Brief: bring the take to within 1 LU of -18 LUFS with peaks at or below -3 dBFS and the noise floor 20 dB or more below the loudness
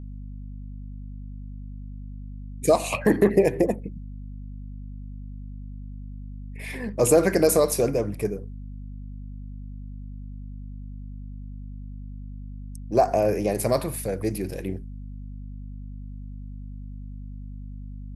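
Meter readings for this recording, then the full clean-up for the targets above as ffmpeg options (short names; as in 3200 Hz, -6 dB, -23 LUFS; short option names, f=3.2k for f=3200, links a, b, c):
hum 50 Hz; harmonics up to 250 Hz; hum level -34 dBFS; loudness -23.5 LUFS; peak -6.0 dBFS; loudness target -18.0 LUFS
-> -af "bandreject=f=50:t=h:w=4,bandreject=f=100:t=h:w=4,bandreject=f=150:t=h:w=4,bandreject=f=200:t=h:w=4,bandreject=f=250:t=h:w=4"
-af "volume=5.5dB,alimiter=limit=-3dB:level=0:latency=1"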